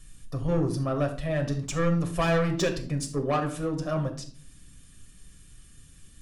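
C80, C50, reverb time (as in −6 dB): 15.0 dB, 10.5 dB, 0.45 s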